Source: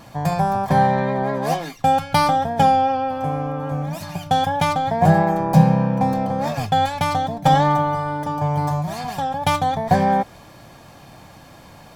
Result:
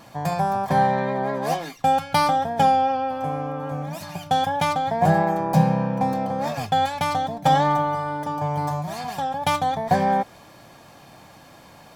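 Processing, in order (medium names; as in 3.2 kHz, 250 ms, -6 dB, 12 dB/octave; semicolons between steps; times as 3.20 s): bass shelf 120 Hz -9.5 dB; trim -2 dB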